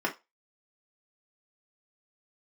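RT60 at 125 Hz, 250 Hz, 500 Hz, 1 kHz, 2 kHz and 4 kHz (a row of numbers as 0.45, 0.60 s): 0.10, 0.15, 0.20, 0.25, 0.20, 0.20 s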